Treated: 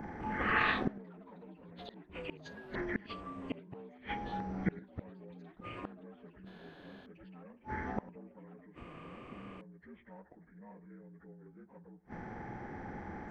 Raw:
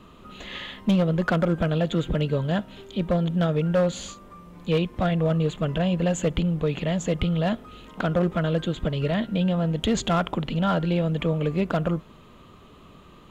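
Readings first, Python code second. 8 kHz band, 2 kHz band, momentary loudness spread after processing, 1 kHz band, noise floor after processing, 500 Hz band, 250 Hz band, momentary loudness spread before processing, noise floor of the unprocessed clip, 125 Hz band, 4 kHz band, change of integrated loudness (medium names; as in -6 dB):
no reading, -4.5 dB, 19 LU, -9.5 dB, -61 dBFS, -21.0 dB, -18.5 dB, 9 LU, -50 dBFS, -23.5 dB, -16.0 dB, -14.5 dB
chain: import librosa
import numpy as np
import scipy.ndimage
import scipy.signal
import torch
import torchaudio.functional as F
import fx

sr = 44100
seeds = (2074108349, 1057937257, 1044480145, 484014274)

y = fx.partial_stretch(x, sr, pct=77)
y = fx.gate_flip(y, sr, shuts_db=-26.0, range_db=-37)
y = fx.band_shelf(y, sr, hz=4000.0, db=-12.5, octaves=1.1)
y = y + 10.0 ** (-19.5 / 20.0) * np.pad(y, (int(102 * sr / 1000.0), 0))[:len(y)]
y = fx.echo_pitch(y, sr, ms=205, semitones=6, count=2, db_per_echo=-6.0)
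y = y * 10.0 ** (7.5 / 20.0)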